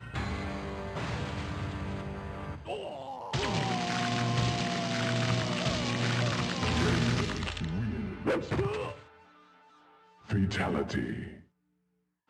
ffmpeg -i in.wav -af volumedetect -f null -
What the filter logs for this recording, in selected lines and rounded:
mean_volume: -32.4 dB
max_volume: -14.8 dB